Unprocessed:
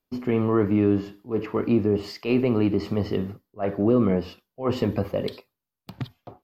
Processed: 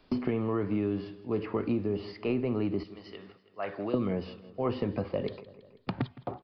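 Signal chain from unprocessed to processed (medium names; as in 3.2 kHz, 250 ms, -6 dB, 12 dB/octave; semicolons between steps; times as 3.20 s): 2.83–3.94 s: differentiator; on a send: feedback delay 163 ms, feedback 34%, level -21 dB; on the sum: resampled via 11.025 kHz; three bands compressed up and down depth 100%; trim -8 dB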